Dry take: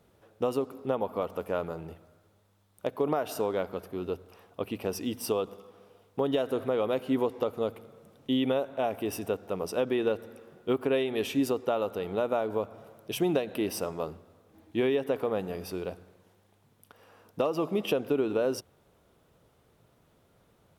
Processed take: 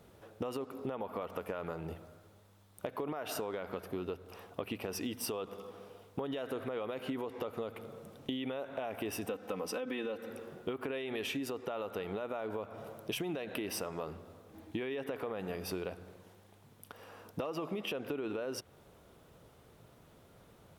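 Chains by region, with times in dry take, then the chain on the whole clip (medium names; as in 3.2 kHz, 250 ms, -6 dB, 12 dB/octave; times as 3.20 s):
9.27–10.30 s: high-pass 110 Hz + band-stop 650 Hz, Q 9.1 + comb 3.9 ms, depth 73%
whole clip: dynamic bell 1.9 kHz, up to +7 dB, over -48 dBFS, Q 0.82; peak limiter -21.5 dBFS; compression 10:1, threshold -39 dBFS; trim +4.5 dB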